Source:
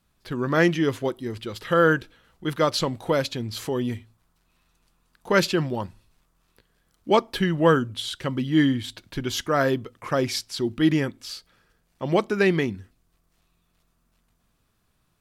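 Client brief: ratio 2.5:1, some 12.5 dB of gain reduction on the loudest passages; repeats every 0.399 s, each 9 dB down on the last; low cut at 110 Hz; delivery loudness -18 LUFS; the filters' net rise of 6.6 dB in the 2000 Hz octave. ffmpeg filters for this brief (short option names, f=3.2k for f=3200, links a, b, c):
-af "highpass=110,equalizer=f=2k:t=o:g=8.5,acompressor=threshold=-31dB:ratio=2.5,aecho=1:1:399|798|1197|1596:0.355|0.124|0.0435|0.0152,volume=14dB"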